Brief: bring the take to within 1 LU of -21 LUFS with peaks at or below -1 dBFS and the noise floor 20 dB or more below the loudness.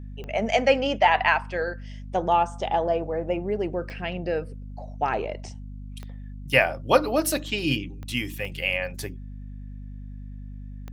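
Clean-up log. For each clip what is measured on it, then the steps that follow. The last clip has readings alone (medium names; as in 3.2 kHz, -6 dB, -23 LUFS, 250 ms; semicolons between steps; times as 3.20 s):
clicks found 6; hum 50 Hz; highest harmonic 250 Hz; hum level -35 dBFS; loudness -25.0 LUFS; peak level -2.5 dBFS; loudness target -21.0 LUFS
-> de-click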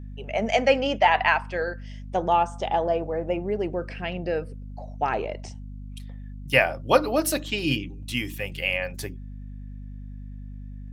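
clicks found 0; hum 50 Hz; highest harmonic 250 Hz; hum level -35 dBFS
-> de-hum 50 Hz, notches 5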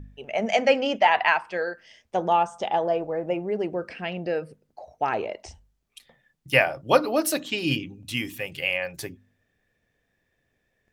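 hum not found; loudness -25.0 LUFS; peak level -2.5 dBFS; loudness target -21.0 LUFS
-> trim +4 dB; peak limiter -1 dBFS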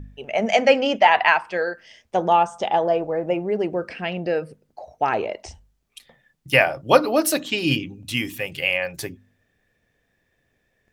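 loudness -21.0 LUFS; peak level -1.0 dBFS; noise floor -70 dBFS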